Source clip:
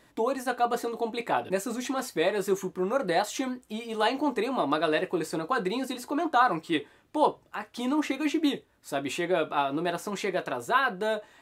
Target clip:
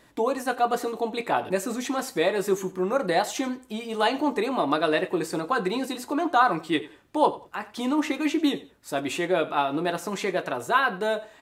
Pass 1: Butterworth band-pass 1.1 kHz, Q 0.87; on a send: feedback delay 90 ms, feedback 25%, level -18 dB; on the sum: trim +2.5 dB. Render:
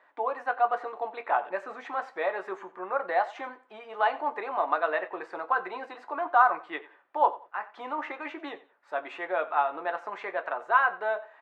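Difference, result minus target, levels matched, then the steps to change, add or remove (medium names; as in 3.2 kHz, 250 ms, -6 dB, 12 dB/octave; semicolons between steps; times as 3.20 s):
1 kHz band +3.0 dB
remove: Butterworth band-pass 1.1 kHz, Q 0.87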